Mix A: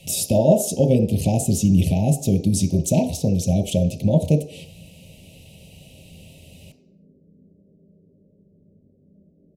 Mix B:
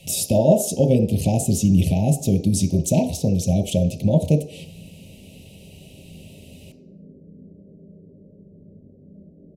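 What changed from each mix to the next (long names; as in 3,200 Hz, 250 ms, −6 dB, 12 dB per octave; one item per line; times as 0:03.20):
background +9.0 dB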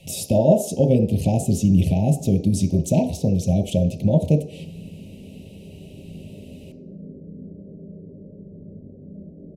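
background +6.5 dB
master: add high-shelf EQ 3,200 Hz −7 dB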